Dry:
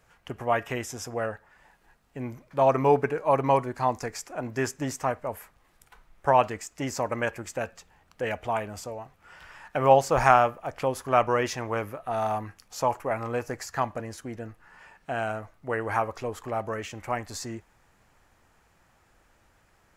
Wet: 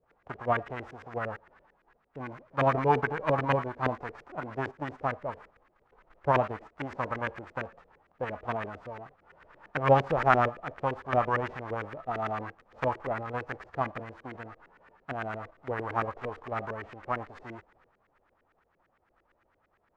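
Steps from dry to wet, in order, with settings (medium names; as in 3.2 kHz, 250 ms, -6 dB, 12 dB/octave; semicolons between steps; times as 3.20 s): formants flattened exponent 0.3; transient shaper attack +3 dB, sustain +7 dB; LFO low-pass saw up 8.8 Hz 380–2000 Hz; trim -7 dB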